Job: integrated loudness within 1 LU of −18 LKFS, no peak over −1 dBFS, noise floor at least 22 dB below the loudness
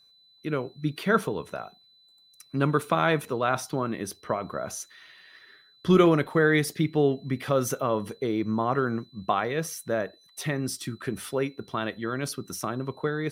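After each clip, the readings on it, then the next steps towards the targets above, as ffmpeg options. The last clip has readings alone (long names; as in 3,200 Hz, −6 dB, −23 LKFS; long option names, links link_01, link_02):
interfering tone 4,000 Hz; level of the tone −57 dBFS; integrated loudness −27.5 LKFS; sample peak −7.5 dBFS; target loudness −18.0 LKFS
→ -af "bandreject=frequency=4000:width=30"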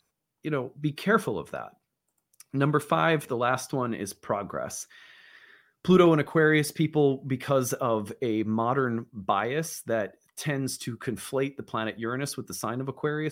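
interfering tone none found; integrated loudness −27.5 LKFS; sample peak −7.5 dBFS; target loudness −18.0 LKFS
→ -af "volume=9.5dB,alimiter=limit=-1dB:level=0:latency=1"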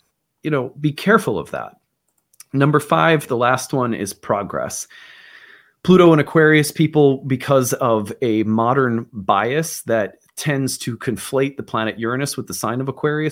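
integrated loudness −18.0 LKFS; sample peak −1.0 dBFS; background noise floor −72 dBFS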